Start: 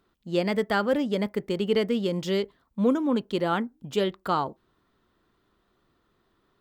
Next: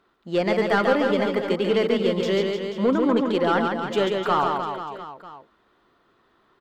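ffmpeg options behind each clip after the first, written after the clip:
ffmpeg -i in.wav -filter_complex "[0:a]asplit=2[link_01][link_02];[link_02]highpass=frequency=720:poles=1,volume=15dB,asoftclip=type=tanh:threshold=-10.5dB[link_03];[link_01][link_03]amix=inputs=2:normalize=0,lowpass=frequency=1900:poles=1,volume=-6dB,aecho=1:1:140|301|486.2|699.1|943.9:0.631|0.398|0.251|0.158|0.1" out.wav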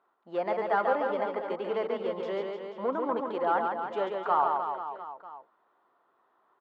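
ffmpeg -i in.wav -af "bandpass=frequency=850:width_type=q:width=1.8:csg=0,volume=-1dB" out.wav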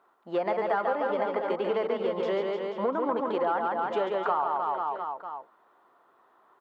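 ffmpeg -i in.wav -af "acompressor=threshold=-31dB:ratio=6,volume=7dB" out.wav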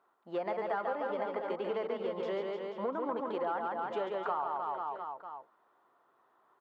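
ffmpeg -i in.wav -af "equalizer=frequency=130:width=5.7:gain=5.5,volume=-7dB" out.wav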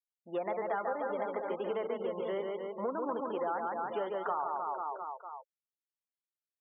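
ffmpeg -i in.wav -af "afftfilt=real='re*gte(hypot(re,im),0.00562)':imag='im*gte(hypot(re,im),0.00562)':win_size=1024:overlap=0.75" out.wav

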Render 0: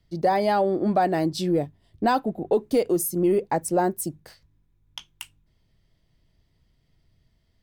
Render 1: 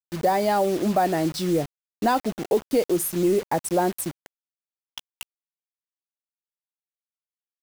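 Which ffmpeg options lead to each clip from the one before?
ffmpeg -i in.wav -af "acrusher=bits=5:mix=0:aa=0.000001" out.wav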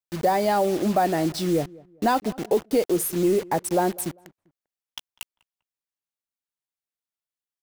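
ffmpeg -i in.wav -filter_complex "[0:a]asplit=2[link_01][link_02];[link_02]adelay=198,lowpass=frequency=1500:poles=1,volume=-22.5dB,asplit=2[link_03][link_04];[link_04]adelay=198,lowpass=frequency=1500:poles=1,volume=0.32[link_05];[link_01][link_03][link_05]amix=inputs=3:normalize=0" out.wav

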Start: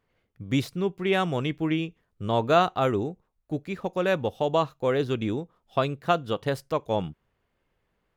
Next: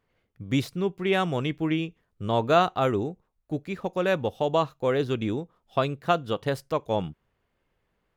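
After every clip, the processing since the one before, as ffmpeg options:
ffmpeg -i in.wav -af anull out.wav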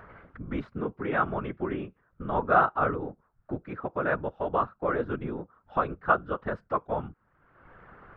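ffmpeg -i in.wav -af "acompressor=mode=upward:threshold=-25dB:ratio=2.5,afftfilt=real='hypot(re,im)*cos(2*PI*random(0))':imag='hypot(re,im)*sin(2*PI*random(1))':win_size=512:overlap=0.75,lowpass=frequency=1400:width_type=q:width=3.6" out.wav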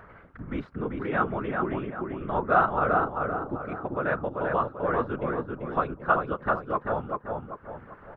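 ffmpeg -i in.wav -filter_complex "[0:a]asplit=2[link_01][link_02];[link_02]adelay=390,lowpass=frequency=2500:poles=1,volume=-3dB,asplit=2[link_03][link_04];[link_04]adelay=390,lowpass=frequency=2500:poles=1,volume=0.43,asplit=2[link_05][link_06];[link_06]adelay=390,lowpass=frequency=2500:poles=1,volume=0.43,asplit=2[link_07][link_08];[link_08]adelay=390,lowpass=frequency=2500:poles=1,volume=0.43,asplit=2[link_09][link_10];[link_10]adelay=390,lowpass=frequency=2500:poles=1,volume=0.43,asplit=2[link_11][link_12];[link_12]adelay=390,lowpass=frequency=2500:poles=1,volume=0.43[link_13];[link_01][link_03][link_05][link_07][link_09][link_11][link_13]amix=inputs=7:normalize=0" out.wav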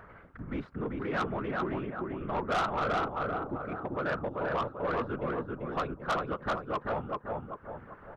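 ffmpeg -i in.wav -af "asoftclip=type=tanh:threshold=-23dB,volume=-2dB" out.wav

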